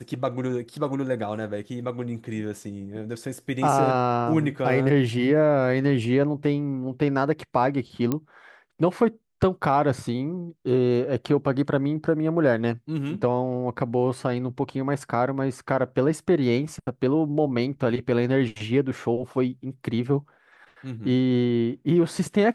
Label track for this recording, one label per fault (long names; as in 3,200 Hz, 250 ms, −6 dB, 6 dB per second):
8.120000	8.120000	click −12 dBFS